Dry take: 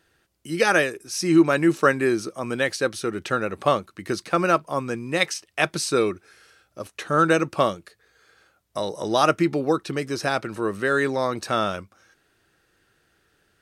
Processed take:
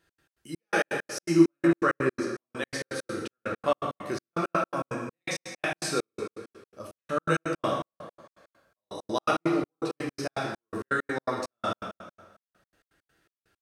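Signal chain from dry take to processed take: plate-style reverb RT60 1.3 s, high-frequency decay 0.8×, DRR -3 dB; step gate "x.x.xx..x." 165 bpm -60 dB; 1.67–2.57 high shelf 9000 Hz -9.5 dB; gain -9 dB

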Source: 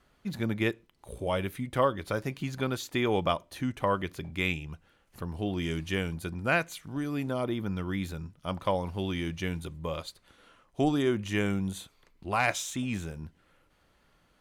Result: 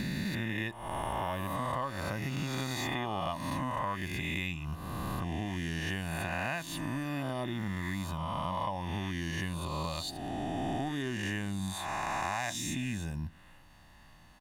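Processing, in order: spectral swells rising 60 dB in 1.76 s; comb 1.1 ms, depth 71%; compressor 5:1, threshold -36 dBFS, peak gain reduction 16.5 dB; gain +3.5 dB

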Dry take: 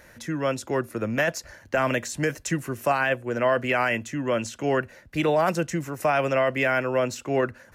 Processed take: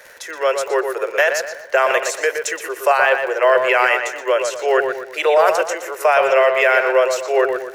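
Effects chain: Chebyshev high-pass 390 Hz, order 6; crackle 89/s -39 dBFS; tape echo 0.12 s, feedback 43%, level -4.5 dB, low-pass 2600 Hz; gain +8.5 dB

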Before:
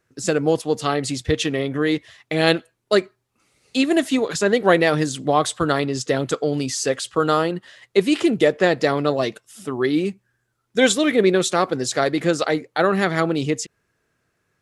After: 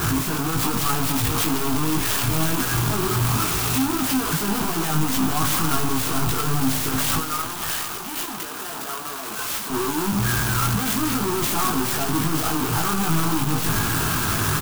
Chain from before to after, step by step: infinite clipping; 7.2–9.7 HPF 420 Hz 12 dB/oct; limiter -19 dBFS, peak gain reduction 5.5 dB; fixed phaser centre 2000 Hz, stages 6; doubler 19 ms -2 dB; echo 0.509 s -12.5 dB; reverb RT60 2.3 s, pre-delay 34 ms, DRR 12.5 dB; clock jitter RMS 0.079 ms

